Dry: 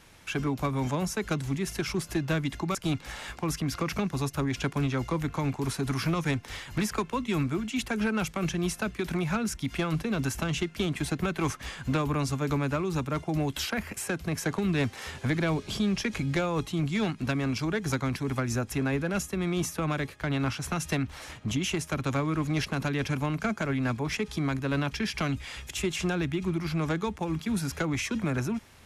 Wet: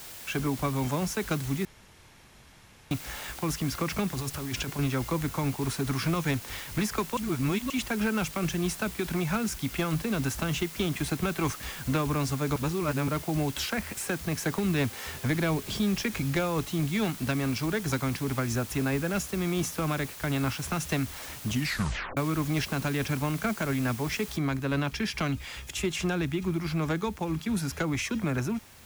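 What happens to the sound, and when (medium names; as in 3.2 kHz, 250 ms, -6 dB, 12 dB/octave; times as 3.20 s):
1.65–2.91 s: room tone
4.10–4.79 s: compressor with a negative ratio -33 dBFS
7.17–7.70 s: reverse
12.56–13.08 s: reverse
21.52 s: tape stop 0.65 s
24.37 s: noise floor step -44 dB -56 dB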